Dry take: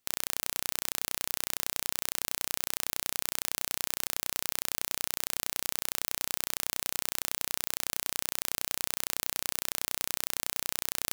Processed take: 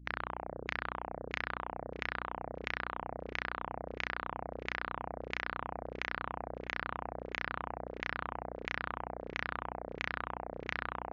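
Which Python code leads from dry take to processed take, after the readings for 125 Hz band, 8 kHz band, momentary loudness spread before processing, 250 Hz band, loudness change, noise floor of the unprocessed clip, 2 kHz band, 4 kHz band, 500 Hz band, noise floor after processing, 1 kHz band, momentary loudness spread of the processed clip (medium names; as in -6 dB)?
+3.5 dB, under -30 dB, 0 LU, +2.5 dB, -8.0 dB, -77 dBFS, +2.0 dB, -13.0 dB, +4.5 dB, -53 dBFS, +4.5 dB, 4 LU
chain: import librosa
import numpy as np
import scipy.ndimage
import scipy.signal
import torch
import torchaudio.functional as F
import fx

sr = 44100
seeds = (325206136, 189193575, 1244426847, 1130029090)

p1 = fx.filter_lfo_lowpass(x, sr, shape='saw_down', hz=1.5, low_hz=410.0, high_hz=2300.0, q=3.0)
p2 = scipy.signal.sosfilt(scipy.signal.ellip(4, 1.0, 40, 6800.0, 'lowpass', fs=sr, output='sos'), p1)
p3 = fx.add_hum(p2, sr, base_hz=60, snr_db=12)
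p4 = fx.spec_gate(p3, sr, threshold_db=-30, keep='strong')
p5 = p4 + fx.echo_feedback(p4, sr, ms=621, feedback_pct=30, wet_db=-19, dry=0)
y = p5 * librosa.db_to_amplitude(1.0)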